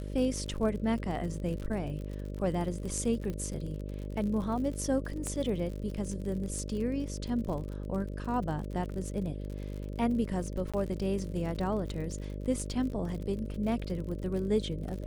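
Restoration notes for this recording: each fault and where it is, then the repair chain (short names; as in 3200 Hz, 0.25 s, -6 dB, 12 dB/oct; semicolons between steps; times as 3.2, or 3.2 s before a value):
buzz 50 Hz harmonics 12 -38 dBFS
crackle 53/s -38 dBFS
3.3 pop -25 dBFS
5.27 pop -22 dBFS
10.72–10.74 gap 16 ms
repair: de-click; de-hum 50 Hz, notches 12; interpolate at 10.72, 16 ms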